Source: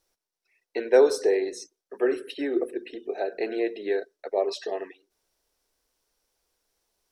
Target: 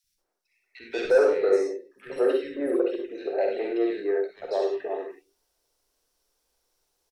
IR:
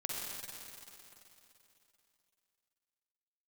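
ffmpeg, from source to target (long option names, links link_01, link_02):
-filter_complex "[0:a]acrossover=split=2600[link_01][link_02];[link_02]acompressor=threshold=-47dB:ratio=4:attack=1:release=60[link_03];[link_01][link_03]amix=inputs=2:normalize=0,asettb=1/sr,asplit=3[link_04][link_05][link_06];[link_04]atrim=end=0.914[link_07];[link_05]atrim=start=0.91:end=3.39,asetpts=PTS-STARTPTS,afade=type=in:duration=0.004:curve=qsin,afade=type=out:start_time=2.476:duration=0.004:curve=qsin,equalizer=frequency=540:width_type=o:width=0.22:gain=12[link_08];[link_06]atrim=start=3.386[link_09];[link_07][link_08]acrossfade=duration=0.004:curve1=hsin:curve2=qsin[link_10];[link_10][link_09]acrossfade=duration=0.004:curve1=qsin:curve2=hsin,acontrast=65,asoftclip=type=tanh:threshold=-8dB,acrossover=split=210|2000[link_11][link_12][link_13];[link_11]adelay=40[link_14];[link_12]adelay=180[link_15];[link_14][link_15][link_13]amix=inputs=3:normalize=0[link_16];[1:a]atrim=start_sample=2205,atrim=end_sample=4410[link_17];[link_16][link_17]afir=irnorm=-1:irlink=0,volume=-4dB"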